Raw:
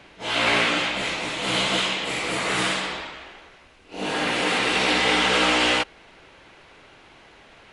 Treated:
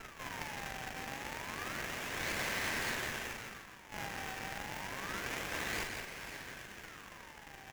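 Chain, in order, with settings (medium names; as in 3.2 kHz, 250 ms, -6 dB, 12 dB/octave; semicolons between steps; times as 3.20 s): low-pass that closes with the level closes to 2.5 kHz, closed at -18 dBFS; reverse; compression, threshold -31 dBFS, peak gain reduction 12.5 dB; reverse; peak limiter -31 dBFS, peak gain reduction 10.5 dB; decimation with a swept rate 32×, swing 160% 0.29 Hz; frequency shift -47 Hz; overload inside the chain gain 35.5 dB; brick-wall FIR high-pass 1.5 kHz; doubling 41 ms -6 dB; on a send: delay 168 ms -6 dB; on the sum: sliding maximum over 9 samples; trim +8 dB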